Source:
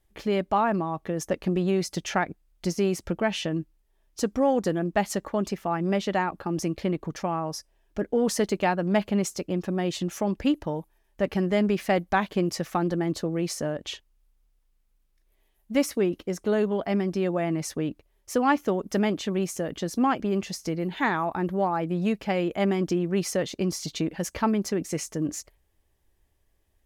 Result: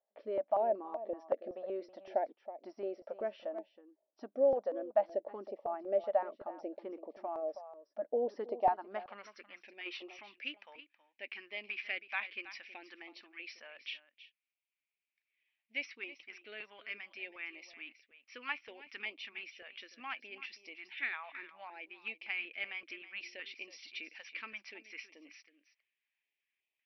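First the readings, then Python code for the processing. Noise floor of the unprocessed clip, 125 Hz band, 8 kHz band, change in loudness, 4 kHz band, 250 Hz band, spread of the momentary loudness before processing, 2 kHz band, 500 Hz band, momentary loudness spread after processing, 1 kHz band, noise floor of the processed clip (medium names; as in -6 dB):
-68 dBFS, under -35 dB, under -25 dB, -12.5 dB, -11.0 dB, -26.0 dB, 7 LU, -7.5 dB, -10.0 dB, 17 LU, -11.5 dB, under -85 dBFS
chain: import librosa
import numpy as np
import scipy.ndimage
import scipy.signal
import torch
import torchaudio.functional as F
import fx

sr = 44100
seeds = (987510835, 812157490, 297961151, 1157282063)

p1 = fx.brickwall_bandpass(x, sr, low_hz=210.0, high_hz=5900.0)
p2 = fx.filter_sweep_bandpass(p1, sr, from_hz=610.0, to_hz=2400.0, start_s=8.48, end_s=9.7, q=6.1)
p3 = p2 + fx.echo_single(p2, sr, ms=322, db=-14.0, dry=0)
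p4 = fx.spec_box(p3, sr, start_s=9.86, length_s=0.31, low_hz=330.0, high_hz=1500.0, gain_db=12)
p5 = fx.filter_held_notch(p4, sr, hz=5.3, low_hz=330.0, high_hz=1500.0)
y = p5 * librosa.db_to_amplitude(3.5)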